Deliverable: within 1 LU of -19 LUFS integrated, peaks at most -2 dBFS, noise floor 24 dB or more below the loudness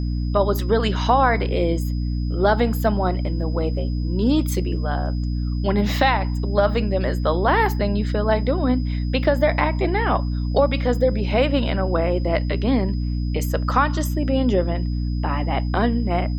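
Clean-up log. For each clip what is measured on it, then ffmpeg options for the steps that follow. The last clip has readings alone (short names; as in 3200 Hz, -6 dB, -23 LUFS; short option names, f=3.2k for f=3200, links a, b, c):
hum 60 Hz; harmonics up to 300 Hz; hum level -21 dBFS; steady tone 5000 Hz; tone level -46 dBFS; loudness -21.5 LUFS; peak -4.0 dBFS; loudness target -19.0 LUFS
-> -af "bandreject=f=60:t=h:w=4,bandreject=f=120:t=h:w=4,bandreject=f=180:t=h:w=4,bandreject=f=240:t=h:w=4,bandreject=f=300:t=h:w=4"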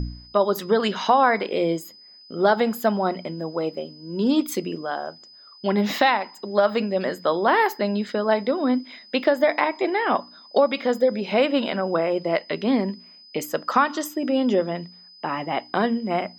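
hum none; steady tone 5000 Hz; tone level -46 dBFS
-> -af "bandreject=f=5k:w=30"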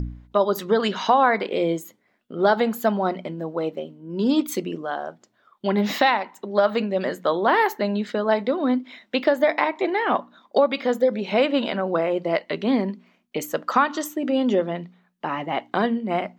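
steady tone none; loudness -23.0 LUFS; peak -5.0 dBFS; loudness target -19.0 LUFS
-> -af "volume=4dB,alimiter=limit=-2dB:level=0:latency=1"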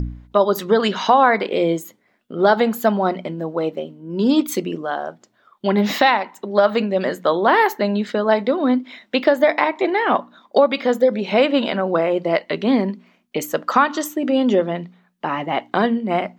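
loudness -19.0 LUFS; peak -2.0 dBFS; noise floor -62 dBFS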